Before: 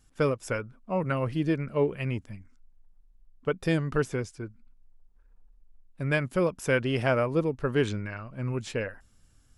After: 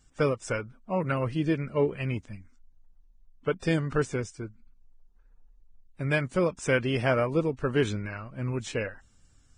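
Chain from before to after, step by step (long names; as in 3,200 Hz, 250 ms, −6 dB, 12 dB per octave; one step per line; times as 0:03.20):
Ogg Vorbis 16 kbit/s 22,050 Hz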